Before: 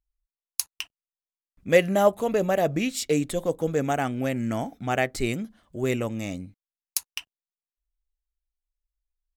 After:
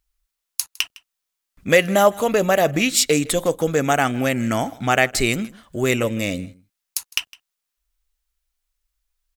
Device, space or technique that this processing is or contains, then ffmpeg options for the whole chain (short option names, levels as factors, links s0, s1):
mastering chain: -filter_complex "[0:a]equalizer=f=1300:t=o:w=0.37:g=2.5,acompressor=threshold=0.0355:ratio=1.5,tiltshelf=f=970:g=-4,alimiter=level_in=3.98:limit=0.891:release=50:level=0:latency=1,asettb=1/sr,asplit=3[s0][s1][s2];[s0]atrim=end=6.034[s3];[s1]atrim=start=6.03:end=6.44,asetpts=PTS-STARTPTS,afade=t=in:d=0.004:c=qsin,afade=t=out:st=0.406:d=0.004:c=qsin,equalizer=f=500:t=o:w=0.33:g=8,equalizer=f=800:t=o:w=0.33:g=-11,equalizer=f=1250:t=o:w=0.33:g=-7,equalizer=f=6300:t=o:w=0.33:g=-8[s4];[s2]atrim=start=6.436[s5];[s3][s4]acrossfade=d=0.004:c1=hsin:c2=qsin[s6];[s6][s5]acrossfade=d=0.004:c1=qsin:c2=hsin,aecho=1:1:158:0.075,volume=0.891"